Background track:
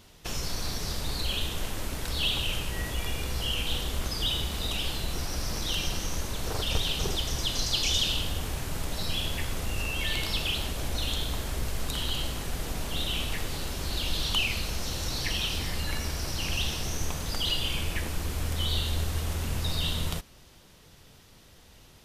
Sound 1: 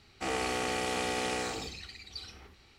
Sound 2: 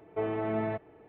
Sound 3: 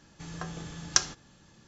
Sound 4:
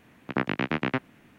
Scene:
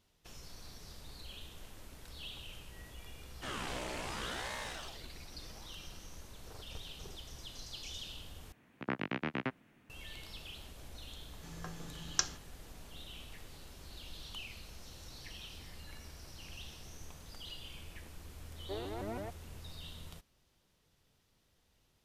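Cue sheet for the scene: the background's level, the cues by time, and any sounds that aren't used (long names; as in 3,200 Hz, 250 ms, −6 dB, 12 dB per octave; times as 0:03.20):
background track −19 dB
0:03.21: mix in 1 −6 dB + ring modulator whose carrier an LFO sweeps 740 Hz, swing 85%, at 0.74 Hz
0:08.52: overwrite with 4 −9.5 dB
0:11.23: mix in 3 −8 dB
0:18.53: mix in 2 −10.5 dB + pitch modulation by a square or saw wave saw up 6.2 Hz, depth 250 cents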